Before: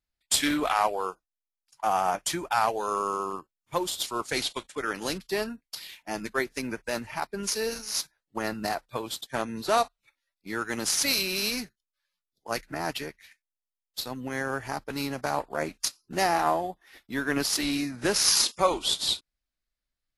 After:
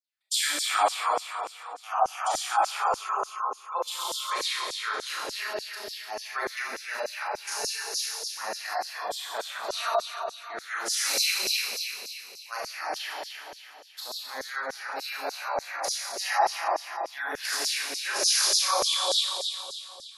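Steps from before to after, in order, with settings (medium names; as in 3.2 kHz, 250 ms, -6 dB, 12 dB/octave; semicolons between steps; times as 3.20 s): Schroeder reverb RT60 2.7 s, combs from 29 ms, DRR -7 dB; LFO high-pass saw down 3.4 Hz 500–6000 Hz; spectral gate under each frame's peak -30 dB strong; trim -8.5 dB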